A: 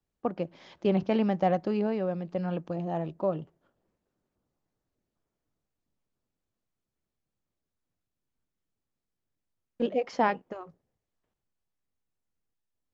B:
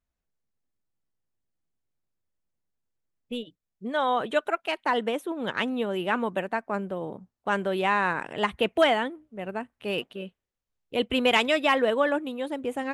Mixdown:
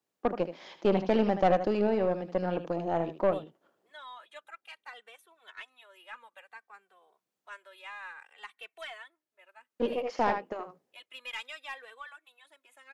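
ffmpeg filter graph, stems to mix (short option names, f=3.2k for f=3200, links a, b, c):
-filter_complex "[0:a]volume=1dB,asplit=2[a][b];[b]volume=-11dB[c];[1:a]highpass=1.3k,bandreject=f=3k:w=20,asplit=2[d][e];[e]adelay=2.2,afreqshift=-0.58[f];[d][f]amix=inputs=2:normalize=1,volume=-14dB,asplit=2[g][h];[h]apad=whole_len=570467[i];[a][i]sidechaincompress=threshold=-59dB:ratio=4:attack=31:release=701[j];[c]aecho=0:1:77:1[k];[j][g][k]amix=inputs=3:normalize=0,highpass=290,aeval=exprs='0.224*(cos(1*acos(clip(val(0)/0.224,-1,1)))-cos(1*PI/2))+0.0224*(cos(4*acos(clip(val(0)/0.224,-1,1)))-cos(4*PI/2))+0.0158*(cos(5*acos(clip(val(0)/0.224,-1,1)))-cos(5*PI/2))+0.00631*(cos(8*acos(clip(val(0)/0.224,-1,1)))-cos(8*PI/2))':c=same"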